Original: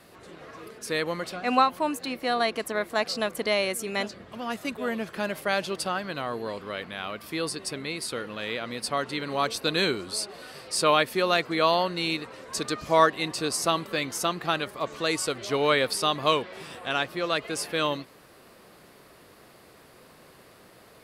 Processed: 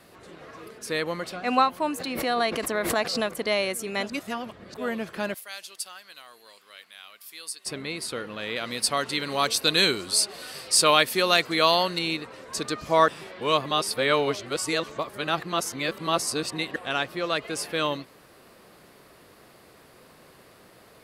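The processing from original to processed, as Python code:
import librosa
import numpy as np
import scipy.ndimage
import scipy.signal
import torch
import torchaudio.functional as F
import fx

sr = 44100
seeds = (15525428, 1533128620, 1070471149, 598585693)

y = fx.pre_swell(x, sr, db_per_s=46.0, at=(1.83, 3.39))
y = fx.differentiator(y, sr, at=(5.34, 7.66))
y = fx.high_shelf(y, sr, hz=2700.0, db=10.0, at=(8.56, 11.99))
y = fx.edit(y, sr, fx.reverse_span(start_s=4.1, length_s=0.64),
    fx.reverse_span(start_s=13.08, length_s=3.68), tone=tone)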